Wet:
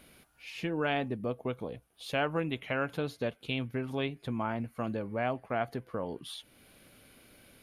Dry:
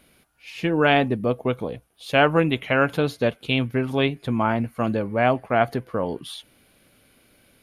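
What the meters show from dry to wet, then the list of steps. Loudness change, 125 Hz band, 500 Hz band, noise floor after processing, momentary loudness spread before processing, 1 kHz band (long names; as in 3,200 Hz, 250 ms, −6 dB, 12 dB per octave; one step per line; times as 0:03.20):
−12.0 dB, −11.5 dB, −12.0 dB, −67 dBFS, 12 LU, −12.5 dB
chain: downward compressor 1.5 to 1, threshold −51 dBFS, peak gain reduction 13.5 dB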